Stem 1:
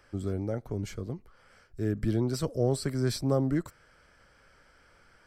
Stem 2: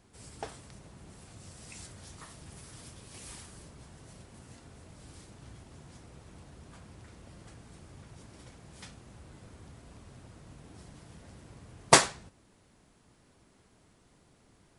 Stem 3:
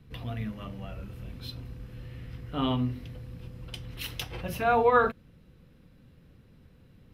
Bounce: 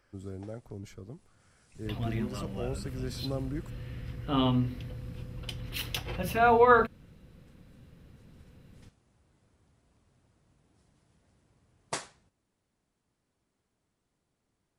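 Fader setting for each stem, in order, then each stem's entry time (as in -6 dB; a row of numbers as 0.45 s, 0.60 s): -9.0 dB, -16.5 dB, +1.5 dB; 0.00 s, 0.00 s, 1.75 s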